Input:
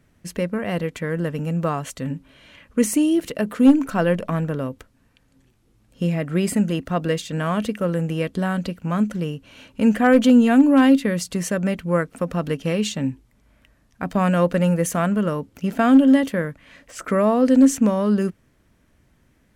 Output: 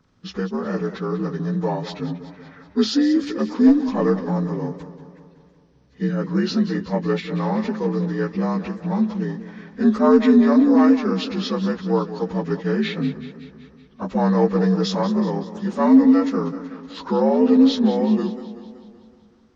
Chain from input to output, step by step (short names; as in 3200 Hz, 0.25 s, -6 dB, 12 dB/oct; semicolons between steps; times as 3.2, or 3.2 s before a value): inharmonic rescaling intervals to 81%; warbling echo 0.188 s, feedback 58%, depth 108 cents, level -13 dB; gain +1 dB